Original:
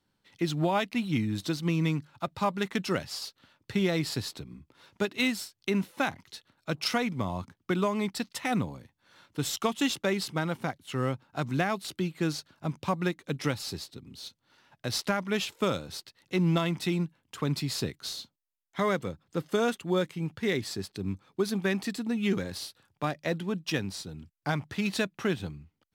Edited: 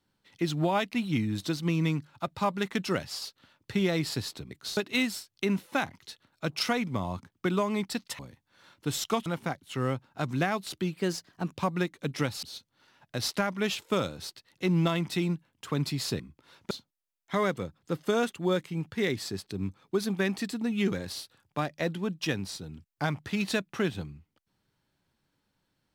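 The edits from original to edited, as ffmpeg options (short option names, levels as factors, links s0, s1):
-filter_complex "[0:a]asplit=10[s0][s1][s2][s3][s4][s5][s6][s7][s8][s9];[s0]atrim=end=4.512[s10];[s1]atrim=start=17.898:end=18.162[s11];[s2]atrim=start=5.018:end=8.442[s12];[s3]atrim=start=8.708:end=9.782[s13];[s4]atrim=start=10.438:end=12.154[s14];[s5]atrim=start=12.15:end=12.78,asetpts=PTS-STARTPTS,asetrate=49833,aresample=44100[s15];[s6]atrim=start=12.776:end=13.682[s16];[s7]atrim=start=14.128:end=17.902[s17];[s8]atrim=start=4.508:end=5.022[s18];[s9]atrim=start=18.158[s19];[s10][s11]acrossfade=d=0.004:c1=hsin:c2=hsin[s20];[s20][s12]acrossfade=d=0.004:c1=hsin:c2=hsin[s21];[s21][s13]acrossfade=d=0.004:c1=hsin:c2=hsin[s22];[s22][s14]acrossfade=d=0.004:c1=hsin:c2=hsin[s23];[s23][s15]acrossfade=d=0.004:c1=hsin:c2=hsin[s24];[s24][s16]acrossfade=d=0.004:c1=hsin:c2=hsin[s25];[s25][s17]acrossfade=d=0.004:c1=hsin:c2=hsin[s26];[s26][s18]acrossfade=d=0.004:c1=hsin:c2=hsin[s27];[s27][s19]acrossfade=d=0.004:c1=hsin:c2=hsin"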